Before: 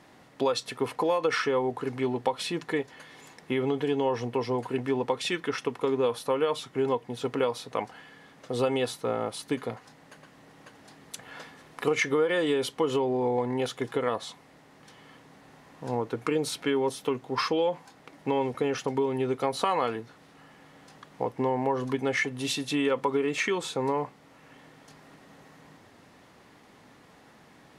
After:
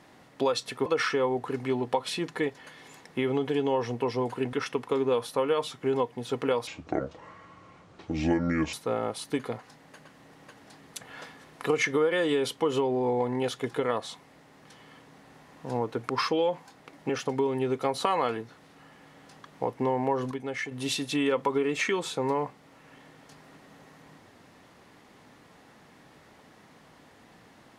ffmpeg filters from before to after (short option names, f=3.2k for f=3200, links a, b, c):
-filter_complex "[0:a]asplit=9[a][b][c][d][e][f][g][h][i];[a]atrim=end=0.862[j];[b]atrim=start=1.188:end=4.862[k];[c]atrim=start=5.448:end=7.594[l];[d]atrim=start=7.59:end=8.91,asetpts=PTS-STARTPTS,asetrate=28224,aresample=44100,atrim=end_sample=90956,asetpts=PTS-STARTPTS[m];[e]atrim=start=8.906:end=16.272[n];[f]atrim=start=17.288:end=18.292[o];[g]atrim=start=18.678:end=21.902[p];[h]atrim=start=21.898:end=22.302,asetpts=PTS-STARTPTS,volume=-6.5dB[q];[i]atrim=start=22.298[r];[j][k]acrossfade=d=0.004:c1=hsin:c2=hsin[s];[s][l]acrossfade=d=0.004:c1=hsin:c2=hsin[t];[t][m]acrossfade=d=0.004:c1=hsin:c2=hsin[u];[u][n]acrossfade=d=0.004:c1=hsin:c2=hsin[v];[v][o]acrossfade=d=0.004:c1=hsin:c2=hsin[w];[w][p]acrossfade=d=0.004:c1=hsin:c2=hsin[x];[x][q]acrossfade=d=0.004:c1=hsin:c2=hsin[y];[y][r]acrossfade=d=0.004:c1=hsin:c2=hsin"